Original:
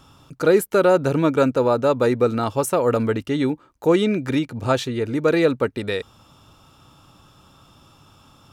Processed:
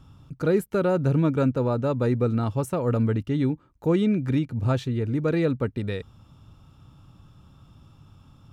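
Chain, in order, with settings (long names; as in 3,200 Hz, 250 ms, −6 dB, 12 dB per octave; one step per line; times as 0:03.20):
bass and treble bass +14 dB, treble −4 dB
level −9 dB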